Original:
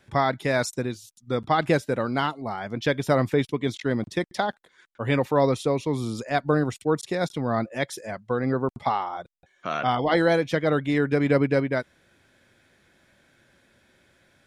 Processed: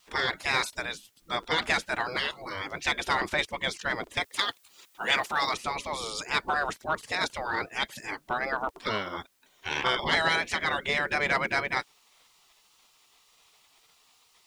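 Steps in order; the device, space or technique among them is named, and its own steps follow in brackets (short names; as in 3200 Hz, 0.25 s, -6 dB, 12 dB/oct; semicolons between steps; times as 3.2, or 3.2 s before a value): spectral gate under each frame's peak -15 dB weak; compact cassette (soft clip -24.5 dBFS, distortion -17 dB; LPF 8800 Hz 12 dB/oct; wow and flutter; white noise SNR 39 dB); 4.23–5.54 tilt +2 dB/oct; gain +8.5 dB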